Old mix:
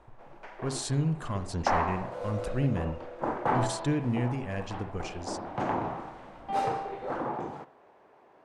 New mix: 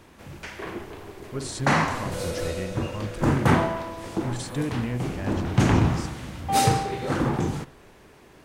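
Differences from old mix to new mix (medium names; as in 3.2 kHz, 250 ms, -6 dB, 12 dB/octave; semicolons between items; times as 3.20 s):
speech: entry +0.70 s; first sound: remove band-pass filter 760 Hz, Q 1.7; second sound +7.5 dB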